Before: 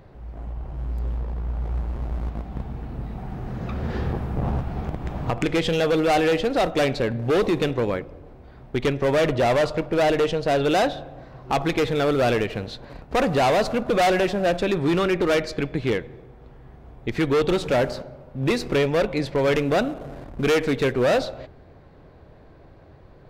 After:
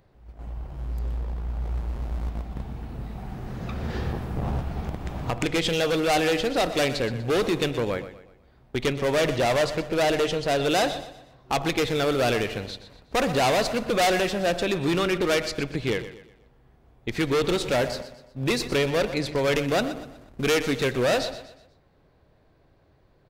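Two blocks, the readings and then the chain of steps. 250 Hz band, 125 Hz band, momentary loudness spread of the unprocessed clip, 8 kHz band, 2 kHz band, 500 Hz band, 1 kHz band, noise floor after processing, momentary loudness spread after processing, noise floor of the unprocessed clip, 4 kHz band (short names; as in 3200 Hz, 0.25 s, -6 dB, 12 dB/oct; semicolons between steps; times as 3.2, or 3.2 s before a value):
-3.0 dB, -3.0 dB, 14 LU, +5.0 dB, -0.5 dB, -3.0 dB, -2.5 dB, -60 dBFS, 14 LU, -48 dBFS, +2.5 dB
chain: gate -34 dBFS, range -9 dB; high shelf 3000 Hz +9.5 dB; on a send: feedback echo 0.122 s, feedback 39%, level -13 dB; on the sum: gain -3.5 dB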